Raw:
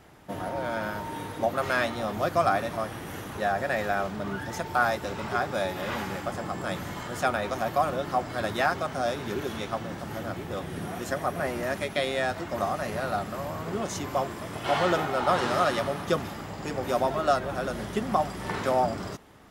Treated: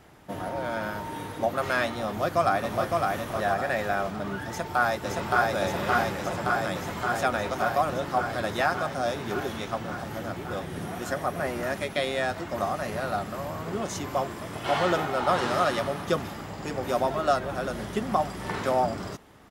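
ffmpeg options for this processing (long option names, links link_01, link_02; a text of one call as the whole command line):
ffmpeg -i in.wav -filter_complex "[0:a]asplit=2[link_01][link_02];[link_02]afade=type=in:start_time=2.07:duration=0.01,afade=type=out:start_time=2.98:duration=0.01,aecho=0:1:560|1120|1680|2240|2800:0.707946|0.283178|0.113271|0.0453085|0.0181234[link_03];[link_01][link_03]amix=inputs=2:normalize=0,asplit=2[link_04][link_05];[link_05]afade=type=in:start_time=4.48:duration=0.01,afade=type=out:start_time=5.52:duration=0.01,aecho=0:1:570|1140|1710|2280|2850|3420|3990|4560|5130|5700|6270|6840:0.891251|0.713001|0.570401|0.45632|0.365056|0.292045|0.233636|0.186909|0.149527|0.119622|0.0956973|0.0765579[link_06];[link_04][link_06]amix=inputs=2:normalize=0" out.wav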